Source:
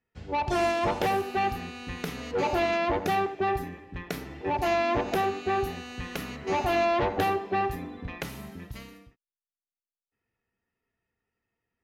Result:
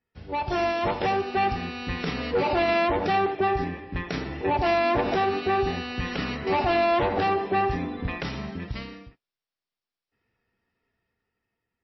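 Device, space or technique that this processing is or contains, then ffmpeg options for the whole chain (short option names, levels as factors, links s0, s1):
low-bitrate web radio: -af "dynaudnorm=f=420:g=7:m=2.51,alimiter=limit=0.15:level=0:latency=1:release=37" -ar 16000 -c:a libmp3lame -b:a 24k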